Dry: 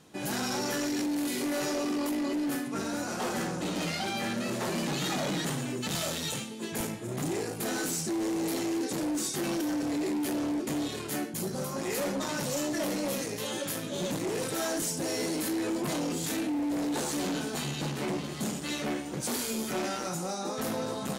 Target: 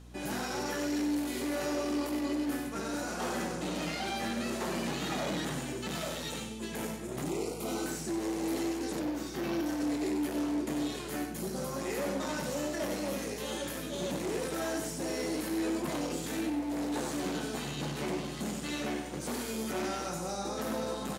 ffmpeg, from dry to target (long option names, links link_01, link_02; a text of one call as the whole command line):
ffmpeg -i in.wav -filter_complex "[0:a]acrossover=split=2700[link_01][link_02];[link_02]alimiter=level_in=8.5dB:limit=-24dB:level=0:latency=1:release=98,volume=-8.5dB[link_03];[link_01][link_03]amix=inputs=2:normalize=0,highpass=150,asplit=2[link_04][link_05];[link_05]aecho=0:1:95:0.447[link_06];[link_04][link_06]amix=inputs=2:normalize=0,aeval=exprs='val(0)+0.00447*(sin(2*PI*60*n/s)+sin(2*PI*2*60*n/s)/2+sin(2*PI*3*60*n/s)/3+sin(2*PI*4*60*n/s)/4+sin(2*PI*5*60*n/s)/5)':channel_layout=same,asettb=1/sr,asplit=3[link_07][link_08][link_09];[link_07]atrim=end=7.304[link_10];[link_08]atrim=start=7.3:end=7.86,asetpts=PTS-STARTPTS,afade=type=in:duration=0.004:curve=qsin,afade=type=out:start_time=0.556:duration=0.004:curve=qsin,asuperstop=centerf=1700:order=4:qfactor=2.6[link_11];[link_09]atrim=start=7.856[link_12];[link_10][link_11]acrossfade=duration=0.004:curve1=hsin:curve2=qsin[link_13];[link_13][link_12]acrossfade=duration=0.004:curve1=qsin:curve2=hsin,asettb=1/sr,asplit=3[link_14][link_15][link_16];[link_14]atrim=end=8.994[link_17];[link_15]atrim=start=8.99:end=9.66,asetpts=PTS-STARTPTS,afade=type=in:duration=0.004:curve=qsin,afade=type=out:start_time=0.666:duration=0.004:curve=qsin,equalizer=frequency=8700:width=1.4:gain=-11.5[link_18];[link_16]atrim=start=9.656[link_19];[link_17][link_18]acrossfade=duration=0.004:curve1=hsin:curve2=qsin[link_20];[link_20][link_19]acrossfade=duration=0.004:curve1=qsin:curve2=hsin,volume=-2.5dB" out.wav